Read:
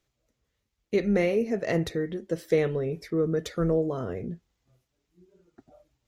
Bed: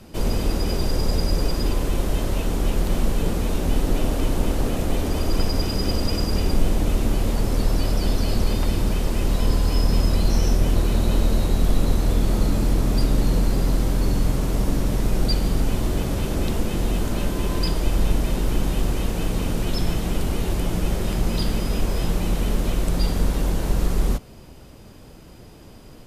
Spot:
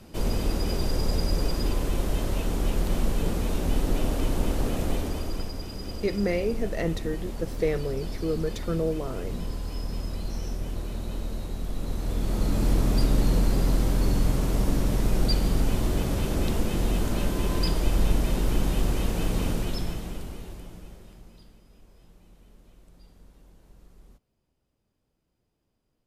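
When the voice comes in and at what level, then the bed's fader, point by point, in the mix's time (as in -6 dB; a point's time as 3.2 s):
5.10 s, -2.5 dB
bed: 4.9 s -4 dB
5.57 s -13 dB
11.71 s -13 dB
12.69 s -2.5 dB
19.48 s -2.5 dB
21.62 s -32.5 dB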